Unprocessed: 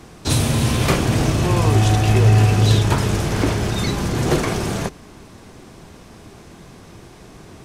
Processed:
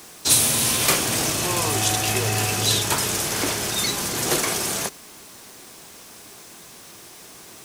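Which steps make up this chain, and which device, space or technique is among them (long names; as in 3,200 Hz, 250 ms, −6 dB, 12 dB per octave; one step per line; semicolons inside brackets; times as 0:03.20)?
turntable without a phono preamp (RIAA equalisation recording; white noise bed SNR 26 dB)
level −2.5 dB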